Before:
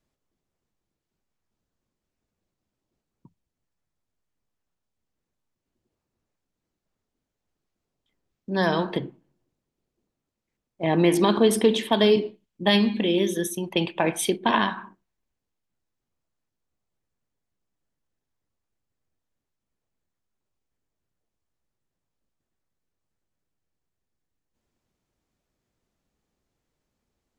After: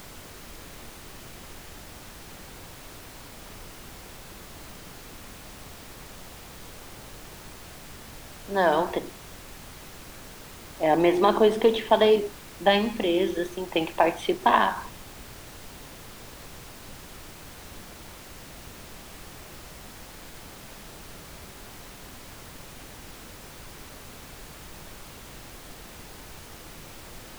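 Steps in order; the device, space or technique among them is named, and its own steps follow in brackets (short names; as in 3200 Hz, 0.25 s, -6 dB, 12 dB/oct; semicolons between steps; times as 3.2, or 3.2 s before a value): horn gramophone (BPF 300–3000 Hz; bell 760 Hz +6 dB; wow and flutter; pink noise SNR 13 dB)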